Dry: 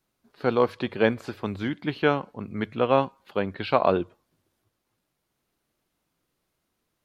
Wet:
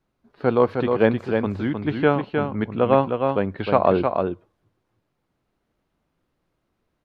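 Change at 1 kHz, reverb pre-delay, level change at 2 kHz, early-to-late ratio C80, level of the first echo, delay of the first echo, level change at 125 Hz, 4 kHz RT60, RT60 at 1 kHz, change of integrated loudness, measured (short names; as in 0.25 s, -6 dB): +3.5 dB, none, +1.5 dB, none, -5.0 dB, 0.31 s, +6.5 dB, none, none, +4.5 dB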